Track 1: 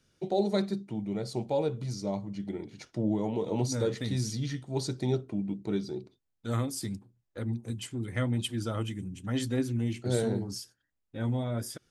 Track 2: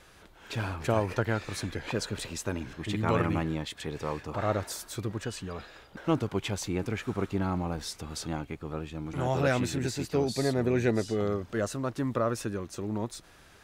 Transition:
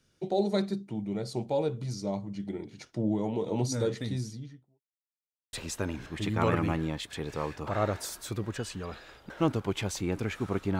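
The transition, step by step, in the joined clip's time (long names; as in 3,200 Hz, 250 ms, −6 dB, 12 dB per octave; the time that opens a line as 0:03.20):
track 1
0:03.86–0:04.81: fade out and dull
0:04.81–0:05.53: silence
0:05.53: continue with track 2 from 0:02.20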